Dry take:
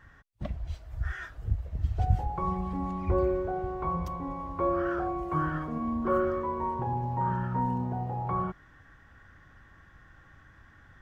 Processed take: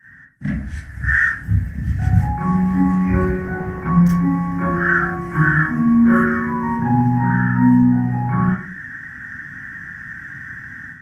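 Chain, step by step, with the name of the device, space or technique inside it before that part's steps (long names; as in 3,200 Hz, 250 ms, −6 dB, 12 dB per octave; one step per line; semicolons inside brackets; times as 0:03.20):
drawn EQ curve 100 Hz 0 dB, 250 Hz +3 dB, 470 Hz −20 dB, 700 Hz −12 dB, 1,100 Hz −13 dB, 1,700 Hz +13 dB, 2,500 Hz −4 dB, 3,700 Hz −11 dB, 5,300 Hz −1 dB, 8,700 Hz +4 dB
far-field microphone of a smart speaker (convolution reverb RT60 0.40 s, pre-delay 26 ms, DRR −8 dB; high-pass filter 140 Hz 12 dB per octave; automatic gain control gain up to 11.5 dB; level −1.5 dB; Opus 24 kbit/s 48,000 Hz)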